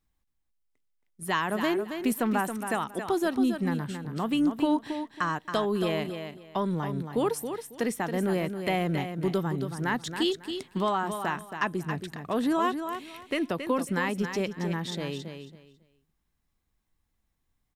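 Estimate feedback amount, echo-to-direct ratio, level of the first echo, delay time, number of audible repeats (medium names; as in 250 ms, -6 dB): 22%, -8.0 dB, -8.0 dB, 274 ms, 3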